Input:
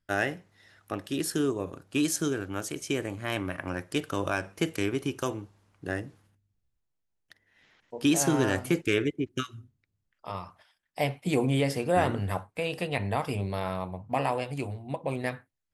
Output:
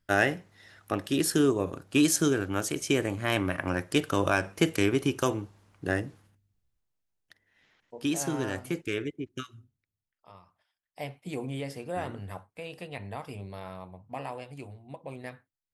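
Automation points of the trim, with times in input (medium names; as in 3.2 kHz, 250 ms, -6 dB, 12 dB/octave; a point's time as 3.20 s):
5.92 s +4 dB
8.25 s -6 dB
9.57 s -6 dB
10.43 s -17 dB
11.03 s -9.5 dB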